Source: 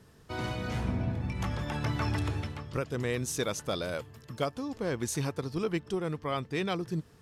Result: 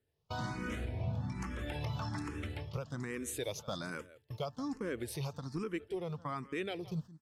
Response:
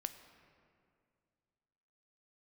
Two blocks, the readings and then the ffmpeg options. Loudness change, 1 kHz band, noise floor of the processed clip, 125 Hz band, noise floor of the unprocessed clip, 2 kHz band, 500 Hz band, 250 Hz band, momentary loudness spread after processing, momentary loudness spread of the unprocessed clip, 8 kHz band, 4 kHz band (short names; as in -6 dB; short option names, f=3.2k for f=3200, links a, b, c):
-6.5 dB, -6.0 dB, -76 dBFS, -6.0 dB, -57 dBFS, -5.5 dB, -7.0 dB, -6.0 dB, 4 LU, 5 LU, -8.0 dB, -7.0 dB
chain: -filter_complex "[0:a]acompressor=threshold=-41dB:ratio=1.5,agate=range=-25dB:threshold=-43dB:ratio=16:detection=peak,aecho=1:1:167:0.1,alimiter=level_in=5dB:limit=-24dB:level=0:latency=1:release=221,volume=-5dB,asplit=2[a][b];[b]afreqshift=1.2[c];[a][c]amix=inputs=2:normalize=1,volume=3.5dB"